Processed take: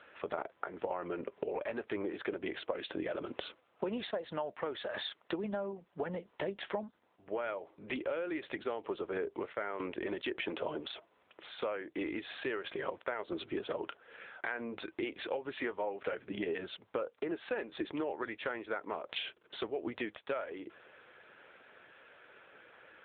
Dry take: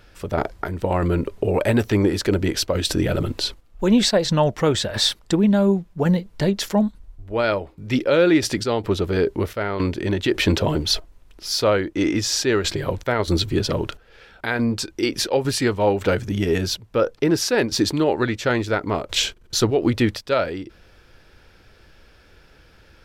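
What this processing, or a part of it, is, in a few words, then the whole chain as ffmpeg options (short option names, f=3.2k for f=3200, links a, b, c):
voicemail: -af "highpass=450,lowpass=2.9k,acompressor=threshold=-34dB:ratio=10,volume=1dB" -ar 8000 -c:a libopencore_amrnb -b:a 7950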